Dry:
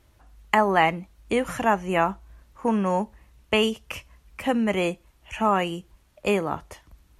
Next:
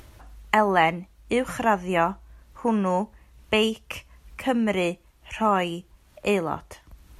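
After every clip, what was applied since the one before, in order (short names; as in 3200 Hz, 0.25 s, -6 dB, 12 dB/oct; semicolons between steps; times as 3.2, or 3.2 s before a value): upward compressor, threshold -38 dBFS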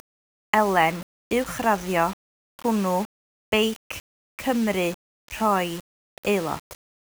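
bell 6200 Hz +6.5 dB 0.2 oct; requantised 6-bit, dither none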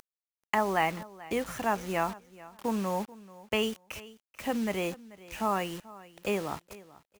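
feedback echo 0.436 s, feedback 21%, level -19.5 dB; gain -7.5 dB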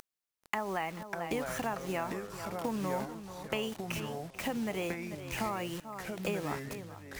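compressor 4:1, threshold -37 dBFS, peak gain reduction 13.5 dB; echoes that change speed 0.458 s, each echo -4 st, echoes 3, each echo -6 dB; gain +4 dB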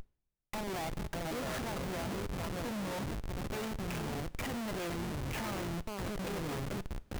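Schmitt trigger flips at -38.5 dBFS; two-slope reverb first 0.47 s, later 4.2 s, from -20 dB, DRR 17 dB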